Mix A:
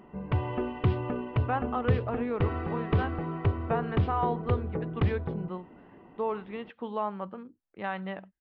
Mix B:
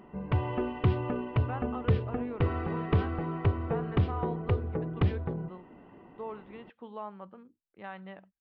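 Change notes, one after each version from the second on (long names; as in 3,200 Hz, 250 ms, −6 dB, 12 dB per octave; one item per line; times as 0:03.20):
speech −9.0 dB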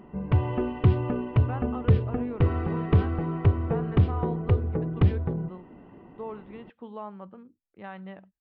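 master: add low-shelf EQ 380 Hz +6.5 dB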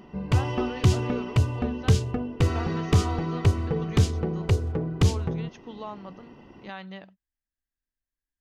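speech: entry −1.15 s
master: remove Gaussian smoothing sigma 3.6 samples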